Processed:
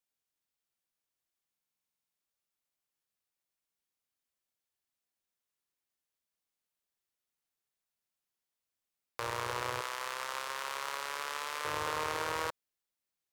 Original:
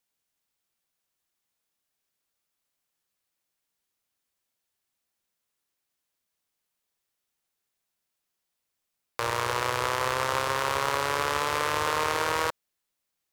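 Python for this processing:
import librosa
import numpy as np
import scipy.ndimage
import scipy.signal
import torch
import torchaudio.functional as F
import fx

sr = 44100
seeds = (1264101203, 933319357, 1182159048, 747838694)

y = fx.highpass(x, sr, hz=1200.0, slope=6, at=(9.81, 11.65))
y = fx.buffer_glitch(y, sr, at_s=(1.49,), block=2048, repeats=13)
y = F.gain(torch.from_numpy(y), -8.0).numpy()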